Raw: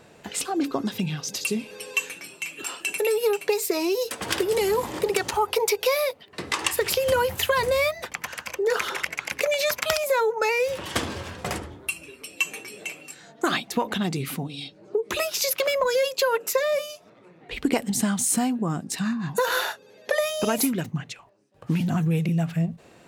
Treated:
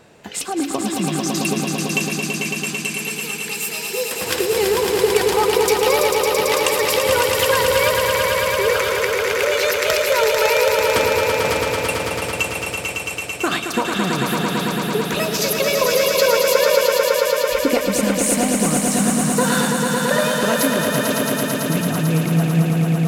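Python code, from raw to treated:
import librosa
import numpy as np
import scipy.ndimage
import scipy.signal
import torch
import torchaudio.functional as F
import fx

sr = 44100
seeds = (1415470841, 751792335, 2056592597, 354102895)

y = fx.tone_stack(x, sr, knobs='10-0-10', at=(2.56, 3.93), fade=0.02)
y = fx.echo_swell(y, sr, ms=111, loudest=5, wet_db=-5.5)
y = y * librosa.db_to_amplitude(2.5)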